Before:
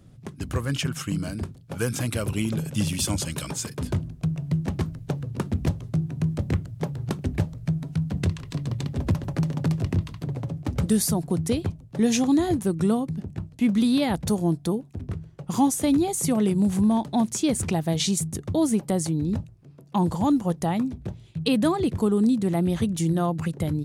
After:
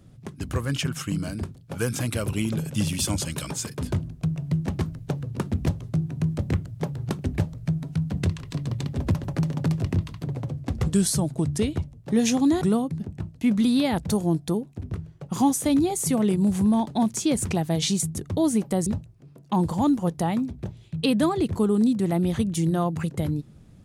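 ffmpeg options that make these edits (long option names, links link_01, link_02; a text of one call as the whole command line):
ffmpeg -i in.wav -filter_complex "[0:a]asplit=5[link_01][link_02][link_03][link_04][link_05];[link_01]atrim=end=10.504[link_06];[link_02]atrim=start=10.5:end=11.85,asetpts=PTS-STARTPTS,asetrate=40131,aresample=44100,atrim=end_sample=65423,asetpts=PTS-STARTPTS[link_07];[link_03]atrim=start=11.846:end=12.482[link_08];[link_04]atrim=start=12.788:end=19.042[link_09];[link_05]atrim=start=19.288[link_10];[link_06][link_07]acrossfade=duration=0.004:curve1=hsin:curve2=hsin[link_11];[link_11][link_08]acrossfade=duration=0.004:curve1=hsin:curve2=hsin[link_12];[link_12][link_09]acrossfade=duration=0.004:curve1=hsin:curve2=hsin[link_13];[link_13][link_10]acrossfade=duration=0.004:curve1=hsin:curve2=hsin" out.wav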